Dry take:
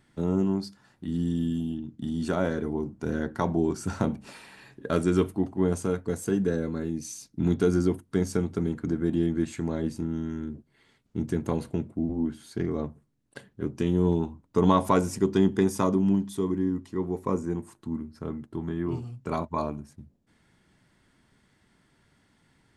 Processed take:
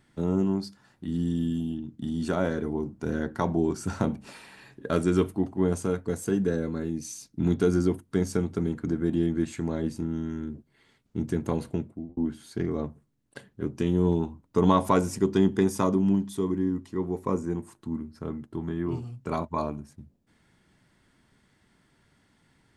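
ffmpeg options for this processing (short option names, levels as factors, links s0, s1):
-filter_complex "[0:a]asplit=2[s0][s1];[s0]atrim=end=12.17,asetpts=PTS-STARTPTS,afade=t=out:st=11.75:d=0.42[s2];[s1]atrim=start=12.17,asetpts=PTS-STARTPTS,afade=t=in:d=0.004:c=hsin[s3];[s2][s3]concat=n=2:v=0:a=1"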